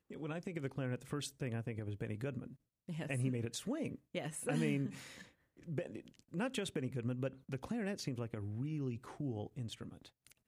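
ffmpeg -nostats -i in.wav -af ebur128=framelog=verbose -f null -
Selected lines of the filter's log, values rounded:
Integrated loudness:
  I:         -41.3 LUFS
  Threshold: -51.7 LUFS
Loudness range:
  LRA:         2.1 LU
  Threshold: -61.3 LUFS
  LRA low:   -42.4 LUFS
  LRA high:  -40.3 LUFS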